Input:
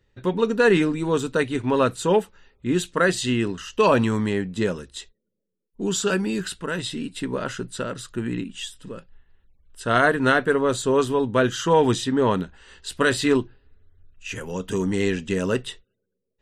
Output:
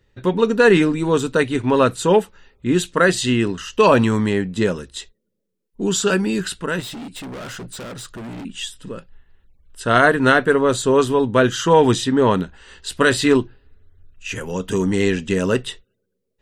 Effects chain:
0:06.80–0:08.45: gain into a clipping stage and back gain 35 dB
level +4.5 dB

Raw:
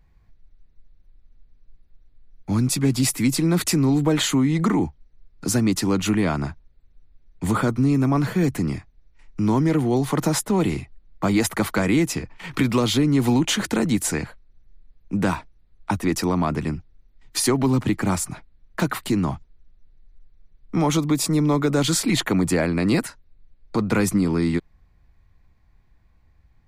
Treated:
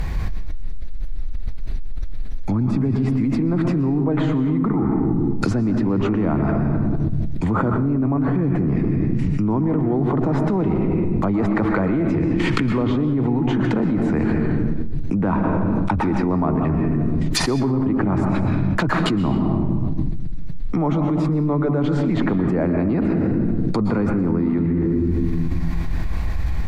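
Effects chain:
treble cut that deepens with the level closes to 1,100 Hz, closed at −19.5 dBFS
on a send at −6 dB: convolution reverb RT60 1.1 s, pre-delay 110 ms
on the sum: envelope flattener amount 100%
level −5.5 dB

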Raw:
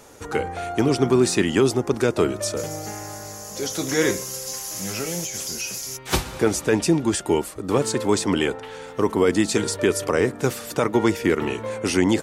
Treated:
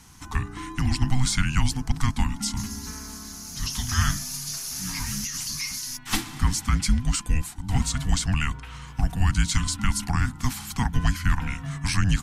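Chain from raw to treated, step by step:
Butterworth band-reject 960 Hz, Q 4.6
frequency shifter −380 Hz
parametric band 420 Hz −15 dB 0.84 octaves
level −1 dB

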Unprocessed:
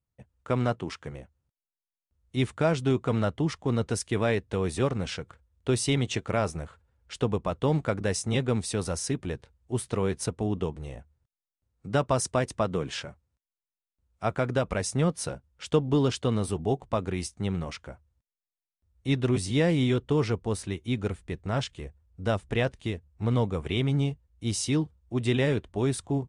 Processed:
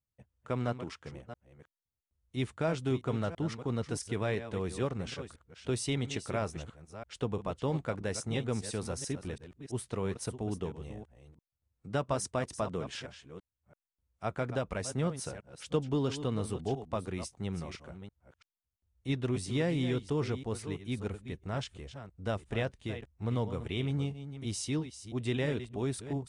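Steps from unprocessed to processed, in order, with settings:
delay that plays each chunk backwards 335 ms, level −11 dB
level −7 dB

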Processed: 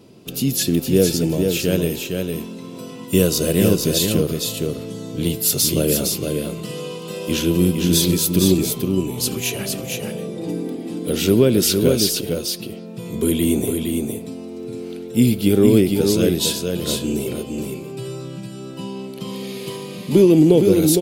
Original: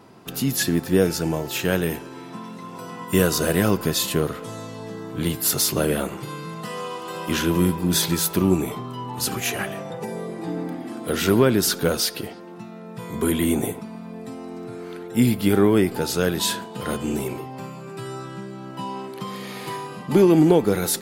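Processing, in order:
flat-topped bell 1,200 Hz −12.5 dB
single-tap delay 461 ms −4.5 dB
level +3 dB

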